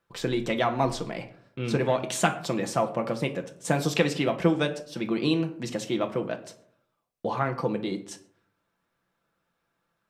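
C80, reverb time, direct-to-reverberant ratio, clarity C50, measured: 17.0 dB, 0.65 s, 4.5 dB, 13.5 dB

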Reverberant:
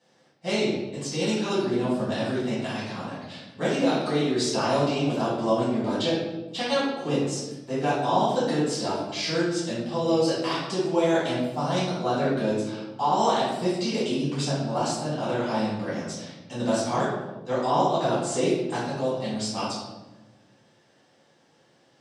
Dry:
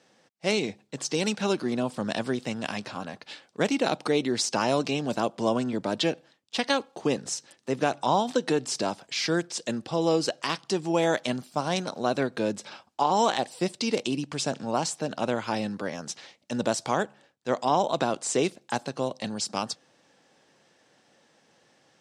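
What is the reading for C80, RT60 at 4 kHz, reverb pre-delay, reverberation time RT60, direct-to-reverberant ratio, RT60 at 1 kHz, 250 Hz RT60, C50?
3.5 dB, 0.70 s, 4 ms, 1.1 s, −11.5 dB, 0.95 s, 1.8 s, 0.0 dB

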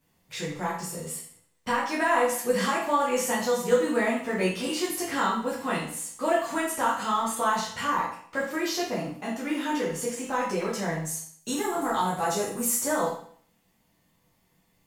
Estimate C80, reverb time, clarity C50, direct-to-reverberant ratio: 8.0 dB, 0.55 s, 4.0 dB, −7.5 dB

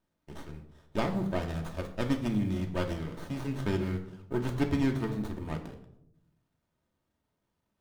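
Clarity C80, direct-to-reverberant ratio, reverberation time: 12.5 dB, 2.5 dB, 0.75 s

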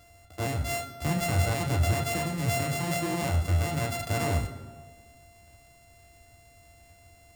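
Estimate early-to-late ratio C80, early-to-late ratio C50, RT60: 13.0 dB, 12.0 dB, 1.5 s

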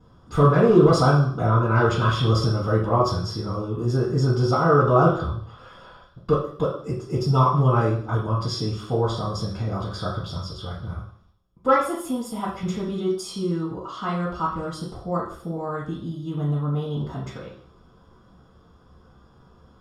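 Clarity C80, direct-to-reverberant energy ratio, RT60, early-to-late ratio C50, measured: 8.0 dB, −8.5 dB, 0.55 s, 4.5 dB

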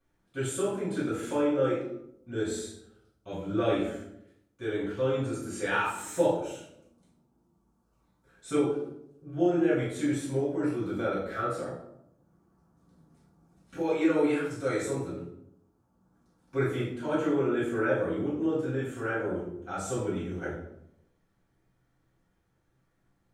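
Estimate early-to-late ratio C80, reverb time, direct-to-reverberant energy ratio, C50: 6.0 dB, 0.80 s, −11.0 dB, 2.5 dB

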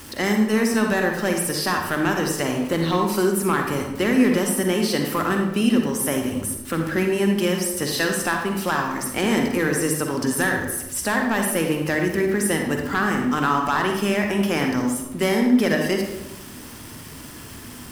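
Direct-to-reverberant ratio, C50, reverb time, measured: 2.5 dB, 3.0 dB, 1.0 s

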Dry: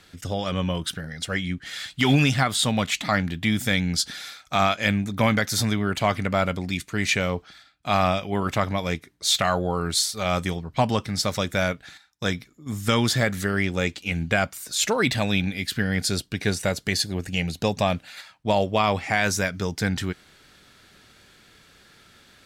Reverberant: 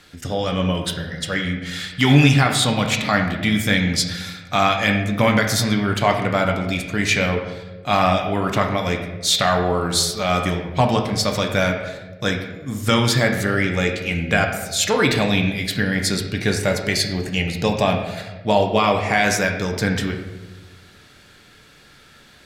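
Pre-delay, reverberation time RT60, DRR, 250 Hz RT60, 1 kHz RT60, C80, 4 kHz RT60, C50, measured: 4 ms, 1.3 s, 2.5 dB, 1.4 s, 1.1 s, 8.0 dB, 0.75 s, 6.0 dB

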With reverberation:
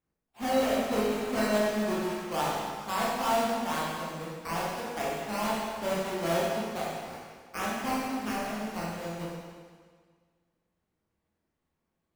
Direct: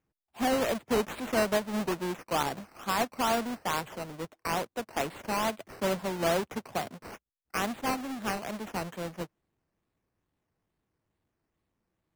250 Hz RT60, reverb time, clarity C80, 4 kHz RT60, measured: 1.7 s, 1.7 s, 1.0 dB, 1.6 s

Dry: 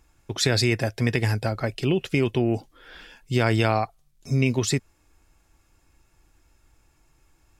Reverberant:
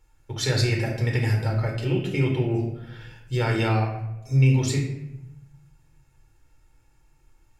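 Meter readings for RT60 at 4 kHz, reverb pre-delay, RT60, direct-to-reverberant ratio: 0.55 s, 4 ms, 0.90 s, −1.0 dB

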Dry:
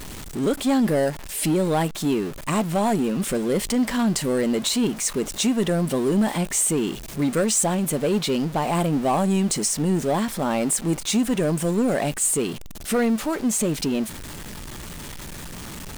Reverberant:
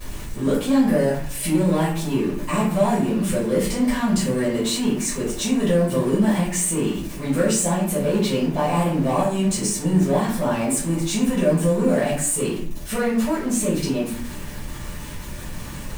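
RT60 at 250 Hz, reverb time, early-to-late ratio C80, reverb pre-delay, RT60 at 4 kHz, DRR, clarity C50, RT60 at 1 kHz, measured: 0.75 s, 0.55 s, 8.0 dB, 5 ms, 0.35 s, −10.5 dB, 4.5 dB, 0.50 s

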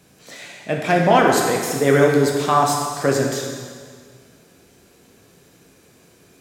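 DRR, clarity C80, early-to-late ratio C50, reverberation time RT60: −0.5 dB, 3.5 dB, 2.0 dB, 1.8 s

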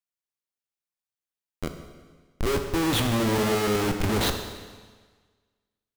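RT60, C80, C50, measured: 1.5 s, 8.5 dB, 7.0 dB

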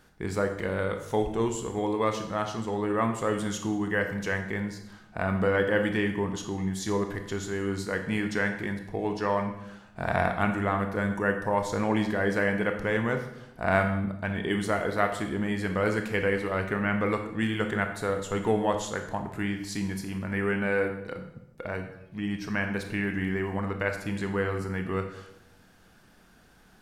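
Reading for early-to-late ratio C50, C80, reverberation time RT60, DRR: 8.0 dB, 10.5 dB, 0.85 s, 5.0 dB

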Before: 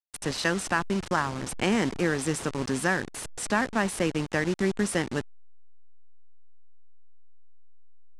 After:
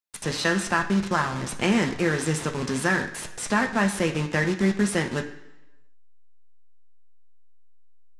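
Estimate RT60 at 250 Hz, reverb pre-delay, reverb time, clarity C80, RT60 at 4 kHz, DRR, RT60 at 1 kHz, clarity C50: 0.95 s, 3 ms, 1.0 s, 13.5 dB, 1.0 s, 2.0 dB, 1.0 s, 10.5 dB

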